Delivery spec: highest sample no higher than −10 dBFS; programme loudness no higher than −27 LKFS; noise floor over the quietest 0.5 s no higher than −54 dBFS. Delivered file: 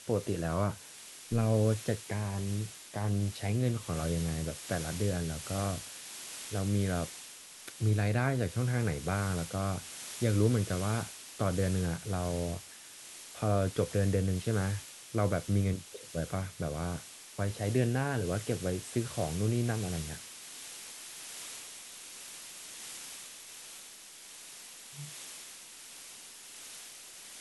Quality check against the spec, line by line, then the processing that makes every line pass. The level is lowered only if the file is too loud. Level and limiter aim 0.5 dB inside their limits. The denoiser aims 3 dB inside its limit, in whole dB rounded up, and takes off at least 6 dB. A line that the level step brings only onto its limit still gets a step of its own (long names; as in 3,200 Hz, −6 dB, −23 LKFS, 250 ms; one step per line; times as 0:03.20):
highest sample −15.0 dBFS: in spec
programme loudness −33.5 LKFS: in spec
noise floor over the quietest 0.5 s −50 dBFS: out of spec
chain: broadband denoise 7 dB, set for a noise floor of −50 dBFS